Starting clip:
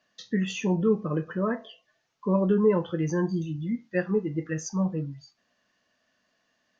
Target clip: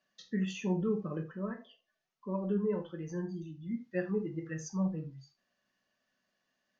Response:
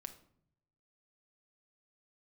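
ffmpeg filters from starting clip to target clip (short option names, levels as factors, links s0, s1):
-filter_complex "[0:a]asettb=1/sr,asplit=3[s0][s1][s2];[s0]atrim=end=1.234[s3];[s1]atrim=start=1.23:end=3.71,asetpts=PTS-STARTPTS,afade=t=in:d=0.004:c=qsin,afade=t=out:st=2.476:d=0.004:c=qsin,flanger=delay=3:depth=2.4:regen=57:speed=1.8:shape=triangular[s4];[s2]atrim=start=3.706[s5];[s3][s4]acrossfade=d=0.004:c1=hsin:c2=qsin[s6];[s6][s5]acrossfade=d=0.004:c1=qsin:c2=hsin[s7];[1:a]atrim=start_sample=2205,atrim=end_sample=3969[s8];[s7][s8]afir=irnorm=-1:irlink=0,volume=0.631"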